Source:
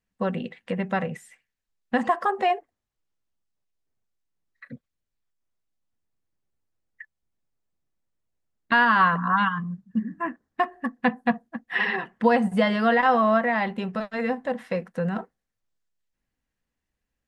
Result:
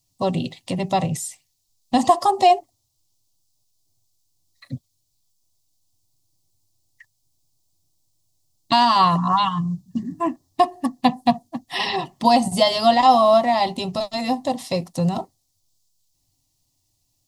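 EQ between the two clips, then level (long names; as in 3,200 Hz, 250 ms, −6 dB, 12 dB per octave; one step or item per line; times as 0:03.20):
parametric band 89 Hz +12.5 dB 1.1 octaves
high shelf with overshoot 3,300 Hz +11.5 dB, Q 1.5
phaser with its sweep stopped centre 310 Hz, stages 8
+9.0 dB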